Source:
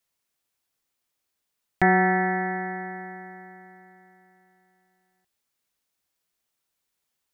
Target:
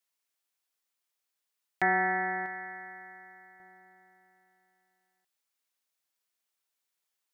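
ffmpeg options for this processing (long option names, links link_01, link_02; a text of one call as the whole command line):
ffmpeg -i in.wav -af "asetnsamples=nb_out_samples=441:pad=0,asendcmd='2.46 highpass f 1500;3.6 highpass f 600',highpass=frequency=690:poles=1,volume=-4dB" out.wav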